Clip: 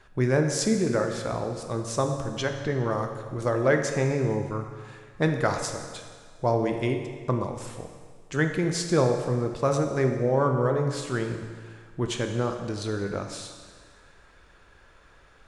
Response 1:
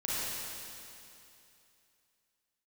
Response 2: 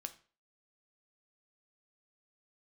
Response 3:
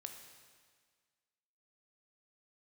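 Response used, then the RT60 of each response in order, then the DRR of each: 3; 2.8, 0.40, 1.7 s; -9.0, 7.5, 4.0 dB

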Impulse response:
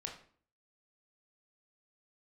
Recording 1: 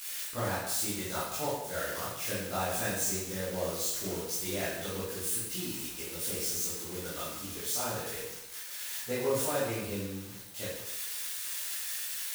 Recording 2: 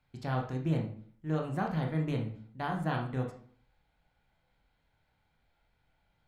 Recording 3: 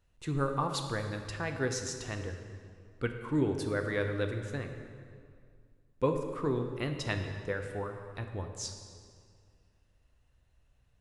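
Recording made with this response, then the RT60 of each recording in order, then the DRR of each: 2; 0.90, 0.50, 2.2 s; -10.5, 1.0, 4.5 dB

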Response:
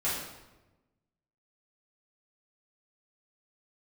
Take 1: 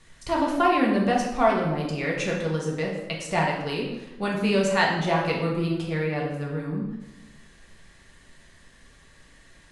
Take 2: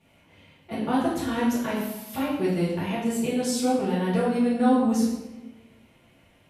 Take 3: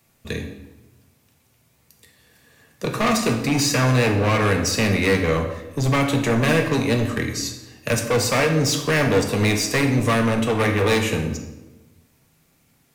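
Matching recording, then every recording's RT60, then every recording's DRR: 2; 1.1, 1.1, 1.1 s; -3.0, -11.5, 3.0 dB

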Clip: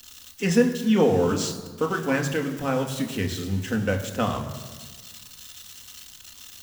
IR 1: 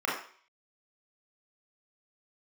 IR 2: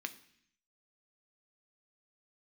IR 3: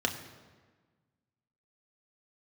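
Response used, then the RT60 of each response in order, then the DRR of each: 3; 0.50, 0.65, 1.4 s; -5.0, 8.0, 3.0 dB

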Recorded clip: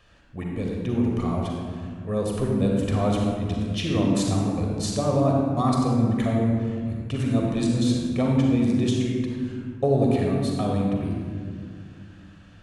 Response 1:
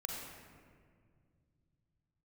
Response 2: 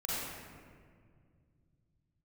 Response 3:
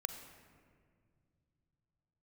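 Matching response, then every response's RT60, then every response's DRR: 1; 2.0, 2.0, 2.0 s; -1.5, -8.5, 7.0 dB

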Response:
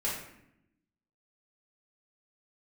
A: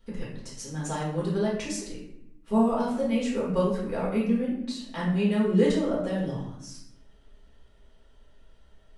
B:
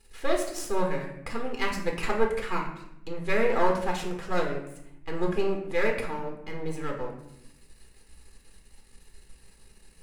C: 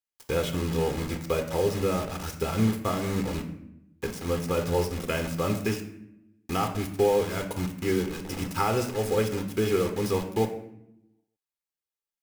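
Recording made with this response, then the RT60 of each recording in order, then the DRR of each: A; 0.75, 0.75, 0.75 s; -6.5, 0.5, 5.0 dB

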